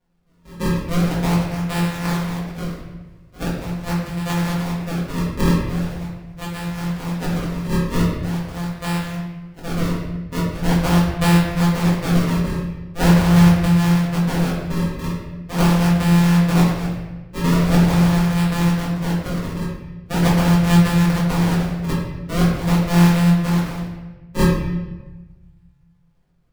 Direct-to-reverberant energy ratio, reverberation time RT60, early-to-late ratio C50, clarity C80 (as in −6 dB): −6.5 dB, 1.1 s, 2.0 dB, 4.5 dB